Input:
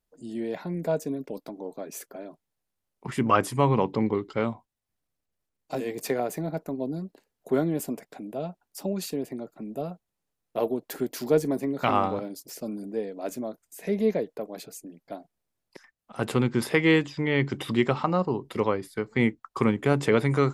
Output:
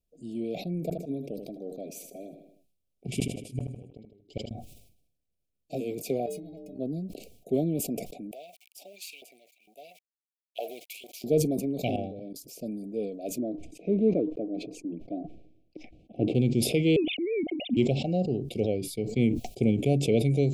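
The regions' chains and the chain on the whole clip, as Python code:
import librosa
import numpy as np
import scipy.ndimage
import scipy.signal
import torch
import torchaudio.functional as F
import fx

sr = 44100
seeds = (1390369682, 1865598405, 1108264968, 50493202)

y = fx.chain(x, sr, fx.gate_flip(shuts_db=-16.0, range_db=-41),
    fx.echo_feedback(ms=78, feedback_pct=46, wet_db=-13.5), at=(0.72, 4.51))
y = fx.chain(y, sr, fx.median_filter(points=3),
    fx.stiff_resonator(f0_hz=91.0, decay_s=0.6, stiffness=0.03),
    fx.env_flatten(amount_pct=100), at=(6.26, 6.79))
y = fx.chain(y, sr, fx.law_mismatch(coded='A'),
    fx.filter_lfo_highpass(shape='saw_up', hz=2.2, low_hz=920.0, high_hz=3100.0, q=5.7), at=(8.31, 11.24))
y = fx.chain(y, sr, fx.lowpass(hz=3300.0, slope=6),
    fx.level_steps(step_db=19), at=(11.96, 12.36))
y = fx.chain(y, sr, fx.lowpass(hz=1900.0, slope=12),
    fx.peak_eq(hz=310.0, db=14.0, octaves=0.35), at=(13.38, 16.35))
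y = fx.chain(y, sr, fx.sine_speech(),
    fx.air_absorb(metres=250.0), at=(16.96, 17.77))
y = scipy.signal.sosfilt(scipy.signal.cheby1(5, 1.0, [730.0, 2300.0], 'bandstop', fs=sr, output='sos'), y)
y = fx.low_shelf(y, sr, hz=320.0, db=6.5)
y = fx.sustainer(y, sr, db_per_s=68.0)
y = y * 10.0 ** (-4.5 / 20.0)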